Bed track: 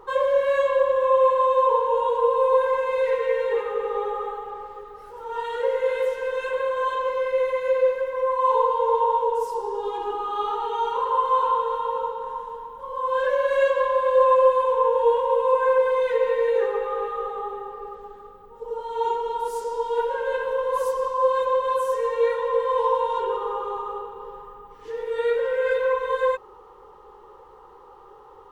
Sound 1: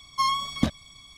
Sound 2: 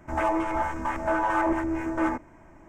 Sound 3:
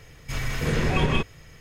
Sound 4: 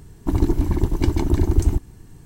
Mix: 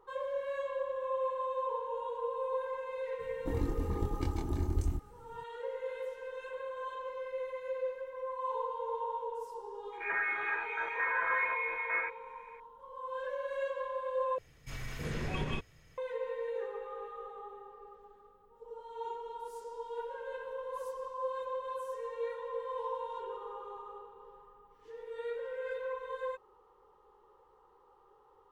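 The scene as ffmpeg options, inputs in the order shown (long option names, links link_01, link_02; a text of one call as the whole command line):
ffmpeg -i bed.wav -i cue0.wav -i cue1.wav -i cue2.wav -i cue3.wav -filter_complex "[0:a]volume=-16dB[link_01];[4:a]asplit=2[link_02][link_03];[link_03]adelay=25,volume=-2.5dB[link_04];[link_02][link_04]amix=inputs=2:normalize=0[link_05];[2:a]lowpass=frequency=2100:width_type=q:width=0.5098,lowpass=frequency=2100:width_type=q:width=0.6013,lowpass=frequency=2100:width_type=q:width=0.9,lowpass=frequency=2100:width_type=q:width=2.563,afreqshift=-2500[link_06];[link_01]asplit=2[link_07][link_08];[link_07]atrim=end=14.384[link_09];[3:a]atrim=end=1.6,asetpts=PTS-STARTPTS,volume=-13dB[link_10];[link_08]atrim=start=15.976[link_11];[link_05]atrim=end=2.25,asetpts=PTS-STARTPTS,volume=-16.5dB,afade=type=in:duration=0.004:curve=hsin,afade=type=out:start_time=2.246:duration=0.004:curve=hsin,adelay=3190[link_12];[link_06]atrim=end=2.68,asetpts=PTS-STARTPTS,volume=-8.5dB,afade=type=in:duration=0.004:curve=hsin,afade=type=out:start_time=2.676:duration=0.004:curve=hsin,adelay=9920[link_13];[link_09][link_10]acrossfade=duration=0.004:curve1=hsin:curve2=hsin[link_14];[link_14][link_11]acrossfade=duration=0.004:curve1=hsin:curve2=hsin[link_15];[link_15][link_12][link_13]amix=inputs=3:normalize=0" out.wav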